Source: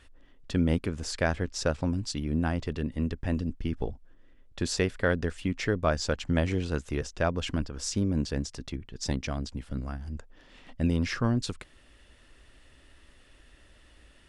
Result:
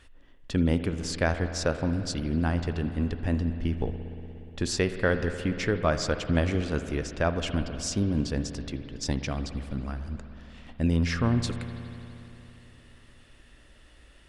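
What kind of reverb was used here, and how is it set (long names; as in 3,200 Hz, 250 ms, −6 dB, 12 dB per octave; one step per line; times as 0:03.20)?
spring reverb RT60 3.3 s, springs 59 ms, chirp 25 ms, DRR 8.5 dB
level +1 dB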